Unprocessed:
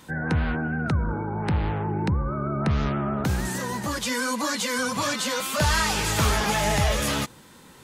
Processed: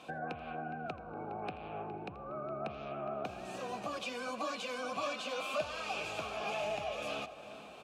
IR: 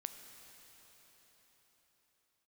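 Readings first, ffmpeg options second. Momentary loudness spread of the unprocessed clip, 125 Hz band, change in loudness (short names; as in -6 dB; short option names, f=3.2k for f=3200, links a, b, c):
6 LU, -25.5 dB, -14.5 dB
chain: -filter_complex "[0:a]equalizer=f=1k:t=o:w=1.2:g=-10,acompressor=threshold=-35dB:ratio=12,asplit=3[a][b][c];[a]bandpass=f=730:t=q:w=8,volume=0dB[d];[b]bandpass=f=1.09k:t=q:w=8,volume=-6dB[e];[c]bandpass=f=2.44k:t=q:w=8,volume=-9dB[f];[d][e][f]amix=inputs=3:normalize=0,asplit=2[g][h];[h]adelay=413,lowpass=f=2.3k:p=1,volume=-12.5dB,asplit=2[i][j];[j]adelay=413,lowpass=f=2.3k:p=1,volume=0.52,asplit=2[k][l];[l]adelay=413,lowpass=f=2.3k:p=1,volume=0.52,asplit=2[m][n];[n]adelay=413,lowpass=f=2.3k:p=1,volume=0.52,asplit=2[o][p];[p]adelay=413,lowpass=f=2.3k:p=1,volume=0.52[q];[g][i][k][m][o][q]amix=inputs=6:normalize=0,asplit=2[r][s];[1:a]atrim=start_sample=2205,adelay=83[t];[s][t]afir=irnorm=-1:irlink=0,volume=-13.5dB[u];[r][u]amix=inputs=2:normalize=0,volume=16.5dB"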